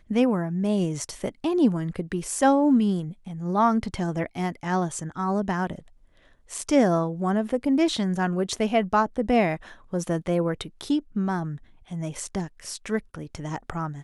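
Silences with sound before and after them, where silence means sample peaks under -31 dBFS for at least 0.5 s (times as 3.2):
5.79–6.52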